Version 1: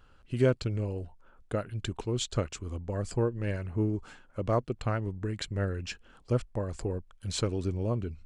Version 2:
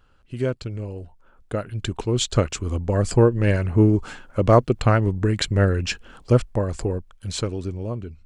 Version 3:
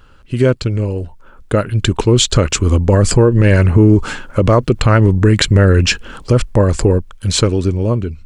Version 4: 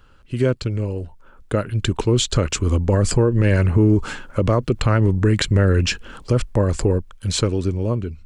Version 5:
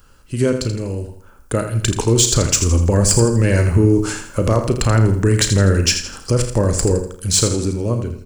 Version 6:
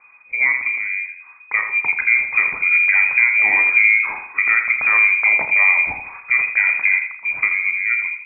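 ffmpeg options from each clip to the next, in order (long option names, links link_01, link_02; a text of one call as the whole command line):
ffmpeg -i in.wav -af "dynaudnorm=framelen=350:gausssize=11:maxgain=14dB" out.wav
ffmpeg -i in.wav -af "equalizer=frequency=720:width=5.3:gain=-6,alimiter=level_in=14.5dB:limit=-1dB:release=50:level=0:latency=1,volume=-1dB" out.wav
ffmpeg -i in.wav -filter_complex "[0:a]acrossover=split=390[link_01][link_02];[link_02]acompressor=threshold=-13dB:ratio=2[link_03];[link_01][link_03]amix=inputs=2:normalize=0,volume=-6dB" out.wav
ffmpeg -i in.wav -filter_complex "[0:a]asplit=2[link_01][link_02];[link_02]aecho=0:1:82|164|246|328:0.355|0.135|0.0512|0.0195[link_03];[link_01][link_03]amix=inputs=2:normalize=0,aexciter=amount=2.1:drive=9.5:freq=4900,asplit=2[link_04][link_05];[link_05]aecho=0:1:35|51:0.282|0.15[link_06];[link_04][link_06]amix=inputs=2:normalize=0,volume=1dB" out.wav
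ffmpeg -i in.wav -filter_complex "[0:a]asplit=2[link_01][link_02];[link_02]asoftclip=type=tanh:threshold=-13.5dB,volume=-9dB[link_03];[link_01][link_03]amix=inputs=2:normalize=0,lowpass=frequency=2100:width_type=q:width=0.5098,lowpass=frequency=2100:width_type=q:width=0.6013,lowpass=frequency=2100:width_type=q:width=0.9,lowpass=frequency=2100:width_type=q:width=2.563,afreqshift=-2500,volume=-2.5dB" out.wav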